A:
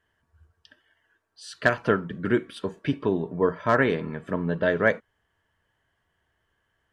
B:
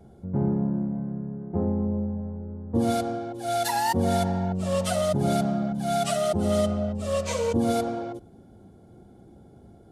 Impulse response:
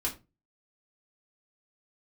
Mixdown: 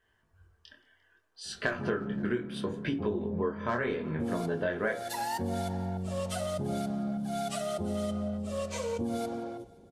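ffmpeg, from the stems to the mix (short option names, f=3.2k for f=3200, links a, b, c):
-filter_complex "[0:a]bandreject=f=81.31:t=h:w=4,bandreject=f=162.62:t=h:w=4,bandreject=f=243.93:t=h:w=4,bandreject=f=325.24:t=h:w=4,bandreject=f=406.55:t=h:w=4,bandreject=f=487.86:t=h:w=4,bandreject=f=569.17:t=h:w=4,bandreject=f=650.48:t=h:w=4,bandreject=f=731.79:t=h:w=4,bandreject=f=813.1:t=h:w=4,bandreject=f=894.41:t=h:w=4,bandreject=f=975.72:t=h:w=4,bandreject=f=1.05703k:t=h:w=4,bandreject=f=1.13834k:t=h:w=4,bandreject=f=1.21965k:t=h:w=4,bandreject=f=1.30096k:t=h:w=4,bandreject=f=1.38227k:t=h:w=4,bandreject=f=1.46358k:t=h:w=4,flanger=delay=17.5:depth=7.7:speed=0.69,volume=0.5dB,asplit=3[a][b][c];[b]volume=-7.5dB[d];[c]volume=-22dB[e];[1:a]adelay=1450,volume=-8dB,asplit=3[f][g][h];[g]volume=-15.5dB[i];[h]volume=-20dB[j];[2:a]atrim=start_sample=2205[k];[d][i]amix=inputs=2:normalize=0[l];[l][k]afir=irnorm=-1:irlink=0[m];[e][j]amix=inputs=2:normalize=0,aecho=0:1:174|348|522|696|870|1044|1218|1392|1566:1|0.59|0.348|0.205|0.121|0.0715|0.0422|0.0249|0.0147[n];[a][f][m][n]amix=inputs=4:normalize=0,acompressor=threshold=-29dB:ratio=4"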